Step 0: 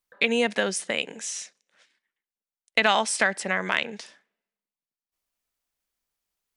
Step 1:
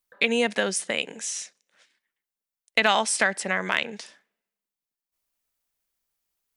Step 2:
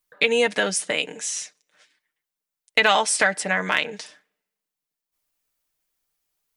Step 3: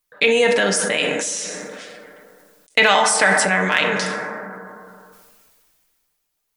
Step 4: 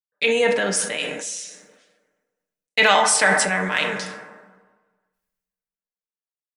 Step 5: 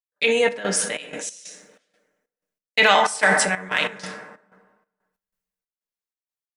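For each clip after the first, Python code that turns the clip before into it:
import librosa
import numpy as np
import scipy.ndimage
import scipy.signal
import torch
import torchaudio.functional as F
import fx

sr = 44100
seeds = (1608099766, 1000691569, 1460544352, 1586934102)

y1 = fx.high_shelf(x, sr, hz=9800.0, db=6.0)
y2 = y1 + 0.54 * np.pad(y1, (int(6.6 * sr / 1000.0), 0))[:len(y1)]
y2 = y2 * 10.0 ** (2.0 / 20.0)
y3 = fx.rev_plate(y2, sr, seeds[0], rt60_s=1.7, hf_ratio=0.3, predelay_ms=0, drr_db=5.0)
y3 = fx.sustainer(y3, sr, db_per_s=23.0)
y3 = y3 * 10.0 ** (2.0 / 20.0)
y4 = fx.rev_plate(y3, sr, seeds[1], rt60_s=4.1, hf_ratio=0.8, predelay_ms=0, drr_db=18.5)
y4 = fx.band_widen(y4, sr, depth_pct=100)
y4 = y4 * 10.0 ** (-4.5 / 20.0)
y5 = fx.step_gate(y4, sr, bpm=93, pattern='.xx.xx.x', floor_db=-12.0, edge_ms=4.5)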